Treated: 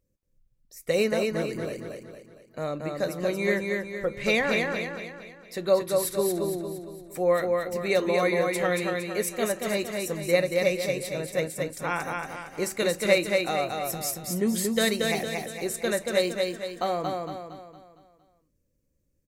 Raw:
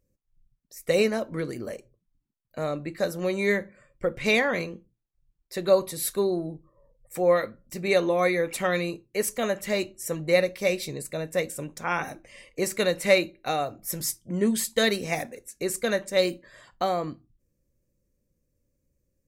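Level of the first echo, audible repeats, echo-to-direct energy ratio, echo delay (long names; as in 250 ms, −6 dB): −3.5 dB, 5, −2.5 dB, 230 ms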